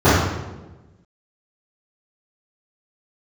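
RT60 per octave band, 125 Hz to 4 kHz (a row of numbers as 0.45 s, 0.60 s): 1.4 s, 1.4 s, 1.3 s, 1.0 s, 0.90 s, 0.75 s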